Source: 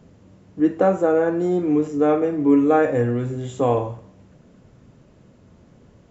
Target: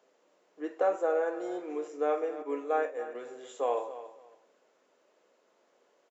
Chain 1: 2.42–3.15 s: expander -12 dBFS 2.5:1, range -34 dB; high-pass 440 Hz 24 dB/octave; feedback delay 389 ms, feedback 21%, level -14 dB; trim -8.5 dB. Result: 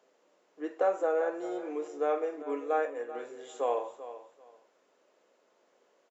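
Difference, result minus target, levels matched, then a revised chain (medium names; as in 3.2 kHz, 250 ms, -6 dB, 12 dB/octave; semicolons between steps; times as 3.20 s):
echo 109 ms late
2.42–3.15 s: expander -12 dBFS 2.5:1, range -34 dB; high-pass 440 Hz 24 dB/octave; feedback delay 280 ms, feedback 21%, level -14 dB; trim -8.5 dB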